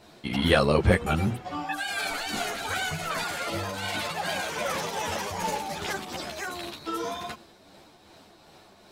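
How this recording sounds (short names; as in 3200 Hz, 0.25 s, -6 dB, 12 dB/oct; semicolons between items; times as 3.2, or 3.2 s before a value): tremolo triangle 2.6 Hz, depth 45%; a shimmering, thickened sound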